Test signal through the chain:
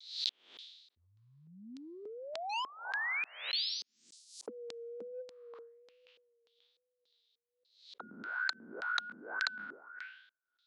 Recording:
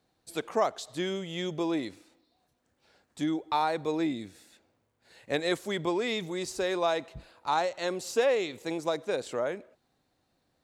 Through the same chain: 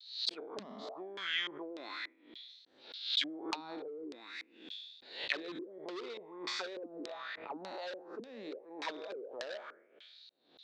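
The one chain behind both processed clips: spectral sustain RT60 1.09 s; auto-wah 220–3900 Hz, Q 5.4, down, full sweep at -21 dBFS; overload inside the chain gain 31 dB; LFO low-pass square 1.7 Hz 420–4200 Hz; compression 8:1, threshold -46 dBFS; resonant low shelf 340 Hz +6 dB, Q 1.5; vibrato 1.2 Hz 58 cents; frequency weighting ITU-R 468; swell ahead of each attack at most 100 dB/s; trim +10 dB

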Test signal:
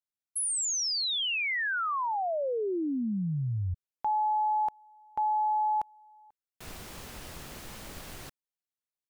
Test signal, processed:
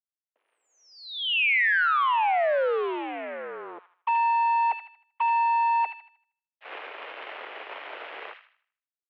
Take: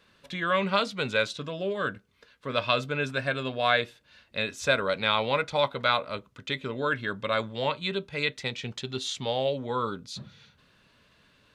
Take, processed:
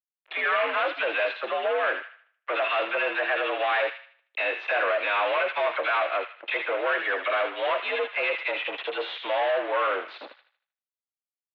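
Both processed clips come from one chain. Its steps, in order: in parallel at +2.5 dB: peak limiter -20.5 dBFS; on the sum: added noise brown -59 dBFS; phase dispersion lows, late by 43 ms, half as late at 1.3 kHz; fuzz box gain 29 dB, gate -38 dBFS; on a send: feedback echo behind a high-pass 78 ms, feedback 37%, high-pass 1.6 kHz, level -4 dB; on the sum: mistuned SSB +76 Hz 360–2800 Hz; trim -8.5 dB

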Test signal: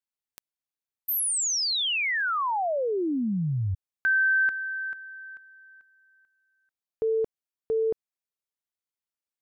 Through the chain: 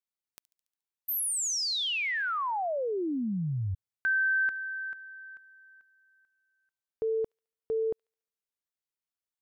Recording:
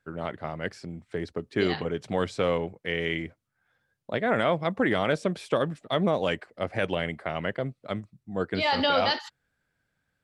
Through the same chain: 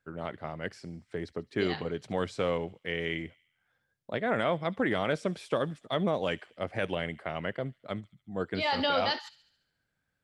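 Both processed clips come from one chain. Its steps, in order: feedback echo behind a high-pass 71 ms, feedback 57%, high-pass 3.1 kHz, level -17 dB; trim -4 dB

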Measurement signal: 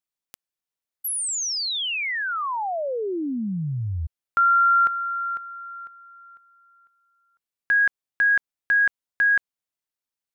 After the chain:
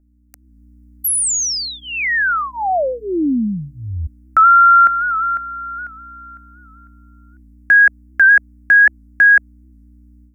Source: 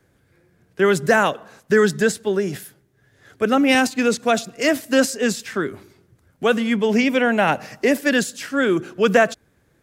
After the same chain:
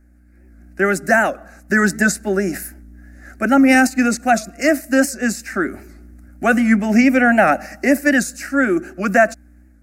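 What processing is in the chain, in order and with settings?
hum 60 Hz, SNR 27 dB; static phaser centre 670 Hz, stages 8; level rider gain up to 12 dB; warped record 78 rpm, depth 100 cents; trim -1 dB

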